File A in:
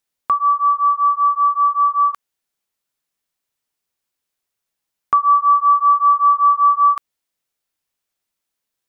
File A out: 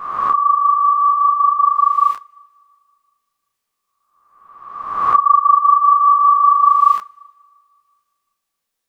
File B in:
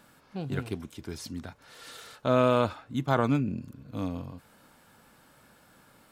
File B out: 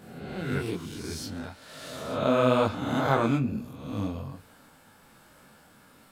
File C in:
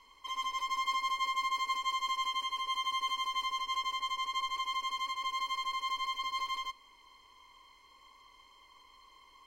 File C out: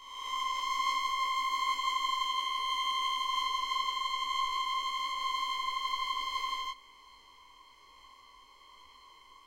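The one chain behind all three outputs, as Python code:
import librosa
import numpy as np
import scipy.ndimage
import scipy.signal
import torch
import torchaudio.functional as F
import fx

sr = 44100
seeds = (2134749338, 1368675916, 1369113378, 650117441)

y = fx.spec_swells(x, sr, rise_s=1.16)
y = fx.rev_double_slope(y, sr, seeds[0], early_s=0.24, late_s=2.0, knee_db=-18, drr_db=16.0)
y = fx.detune_double(y, sr, cents=39)
y = y * librosa.db_to_amplitude(3.5)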